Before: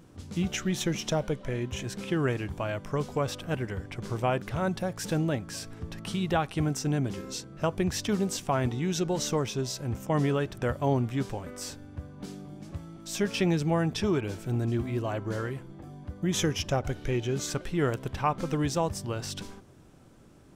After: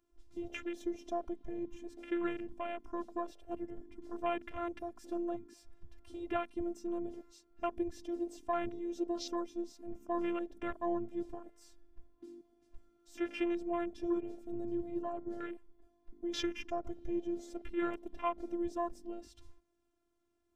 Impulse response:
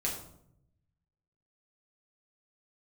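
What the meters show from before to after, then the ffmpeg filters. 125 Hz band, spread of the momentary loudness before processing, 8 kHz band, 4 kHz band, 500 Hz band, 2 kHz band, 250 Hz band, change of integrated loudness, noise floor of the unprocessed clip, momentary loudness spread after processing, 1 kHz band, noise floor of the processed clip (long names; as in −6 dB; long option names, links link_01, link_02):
−29.0 dB, 12 LU, −21.0 dB, −14.0 dB, −8.0 dB, −11.0 dB, −7.5 dB, −9.0 dB, −53 dBFS, 11 LU, −7.0 dB, −77 dBFS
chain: -af "afftfilt=real='hypot(re,im)*cos(PI*b)':imag='0':win_size=512:overlap=0.75,afwtdn=0.0112,volume=-4dB"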